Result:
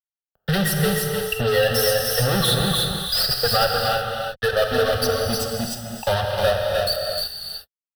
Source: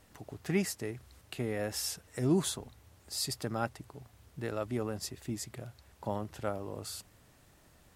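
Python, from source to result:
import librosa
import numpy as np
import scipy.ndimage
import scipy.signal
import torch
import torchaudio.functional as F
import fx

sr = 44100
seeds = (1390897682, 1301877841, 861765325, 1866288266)

p1 = fx.bin_expand(x, sr, power=3.0)
p2 = fx.peak_eq(p1, sr, hz=4700.0, db=5.0, octaves=0.35)
p3 = fx.fuzz(p2, sr, gain_db=53.0, gate_db=-56.0)
p4 = fx.vibrato(p3, sr, rate_hz=1.3, depth_cents=45.0)
p5 = fx.fixed_phaser(p4, sr, hz=1500.0, stages=8)
p6 = p5 + fx.echo_single(p5, sr, ms=306, db=-4.0, dry=0)
p7 = fx.rev_gated(p6, sr, seeds[0], gate_ms=390, shape='flat', drr_db=2.0)
p8 = fx.band_squash(p7, sr, depth_pct=40)
y = p8 * 10.0 ** (-2.0 / 20.0)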